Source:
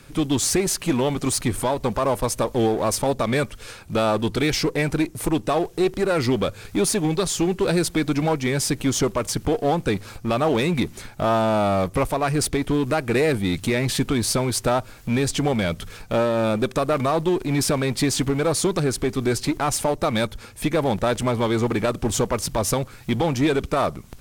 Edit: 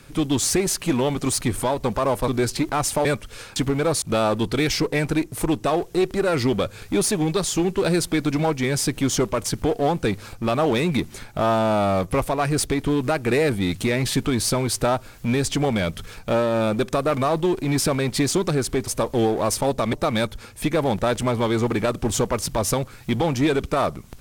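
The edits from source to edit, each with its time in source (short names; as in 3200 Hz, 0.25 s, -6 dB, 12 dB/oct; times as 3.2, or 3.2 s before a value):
2.28–3.34 swap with 19.16–19.93
18.16–18.62 move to 3.85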